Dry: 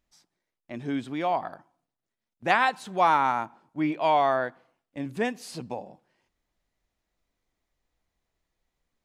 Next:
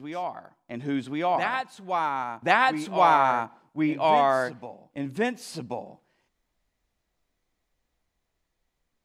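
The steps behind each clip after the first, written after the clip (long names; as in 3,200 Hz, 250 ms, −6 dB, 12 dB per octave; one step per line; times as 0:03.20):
backwards echo 1,082 ms −7 dB
level +1.5 dB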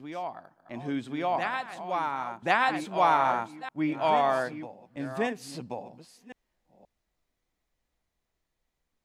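delay that plays each chunk backwards 527 ms, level −12 dB
level −3.5 dB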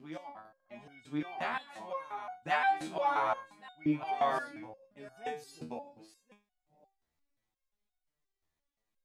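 step-sequenced resonator 5.7 Hz 79–740 Hz
level +4.5 dB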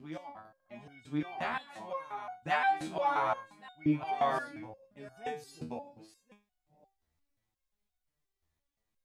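parametric band 72 Hz +9 dB 2.1 octaves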